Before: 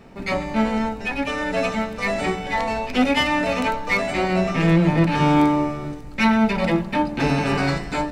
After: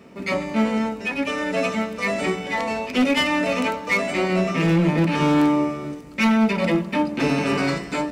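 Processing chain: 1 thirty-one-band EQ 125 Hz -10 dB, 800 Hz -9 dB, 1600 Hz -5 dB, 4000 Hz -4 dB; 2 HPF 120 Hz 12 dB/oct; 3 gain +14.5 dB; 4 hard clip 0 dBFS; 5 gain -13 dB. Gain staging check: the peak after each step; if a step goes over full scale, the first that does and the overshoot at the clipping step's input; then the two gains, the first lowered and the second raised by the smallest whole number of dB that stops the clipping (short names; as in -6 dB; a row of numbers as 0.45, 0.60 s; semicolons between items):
-7.5, -8.5, +6.0, 0.0, -13.0 dBFS; step 3, 6.0 dB; step 3 +8.5 dB, step 5 -7 dB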